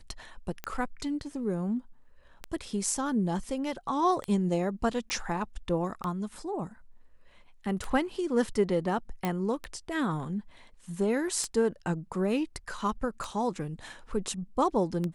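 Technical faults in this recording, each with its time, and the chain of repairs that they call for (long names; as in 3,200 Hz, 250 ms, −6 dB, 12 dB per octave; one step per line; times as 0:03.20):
scratch tick 33 1/3 rpm −19 dBFS
0:05.10: click −18 dBFS
0:09.25: click −16 dBFS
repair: click removal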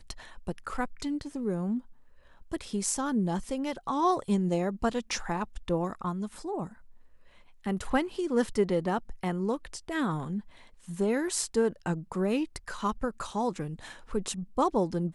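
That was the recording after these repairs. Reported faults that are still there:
0:09.25: click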